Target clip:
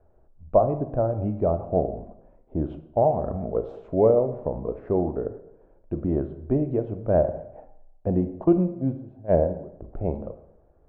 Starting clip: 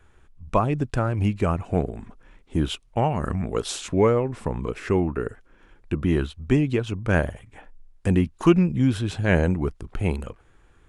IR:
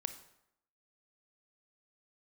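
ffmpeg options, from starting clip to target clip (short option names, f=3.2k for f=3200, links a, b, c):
-filter_complex "[0:a]asplit=3[a][b][c];[a]afade=t=out:st=8.43:d=0.02[d];[b]agate=range=-17dB:threshold=-18dB:ratio=16:detection=peak,afade=t=in:st=8.43:d=0.02,afade=t=out:st=9.72:d=0.02[e];[c]afade=t=in:st=9.72:d=0.02[f];[d][e][f]amix=inputs=3:normalize=0,lowpass=f=630:t=q:w=4.9[g];[1:a]atrim=start_sample=2205[h];[g][h]afir=irnorm=-1:irlink=0,volume=-4dB"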